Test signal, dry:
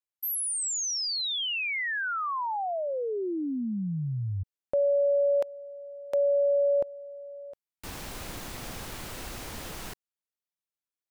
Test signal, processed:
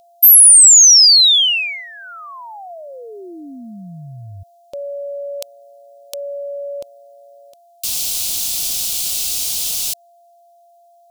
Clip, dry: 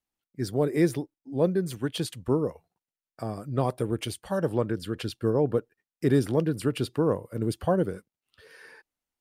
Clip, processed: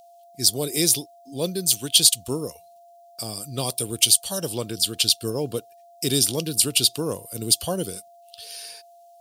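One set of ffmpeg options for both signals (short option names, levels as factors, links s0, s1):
-af "aeval=exprs='val(0)+0.00562*sin(2*PI*690*n/s)':c=same,aexciter=amount=14.4:drive=6.6:freq=2800,volume=0.708"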